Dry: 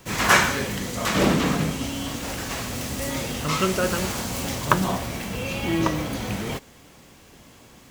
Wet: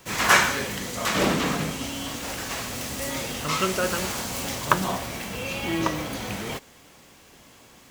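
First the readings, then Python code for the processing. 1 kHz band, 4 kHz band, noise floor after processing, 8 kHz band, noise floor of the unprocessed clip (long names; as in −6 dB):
−0.5 dB, 0.0 dB, −52 dBFS, 0.0 dB, −50 dBFS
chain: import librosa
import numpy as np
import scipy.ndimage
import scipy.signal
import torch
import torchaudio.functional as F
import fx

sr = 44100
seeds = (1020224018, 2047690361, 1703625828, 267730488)

y = fx.low_shelf(x, sr, hz=340.0, db=-6.5)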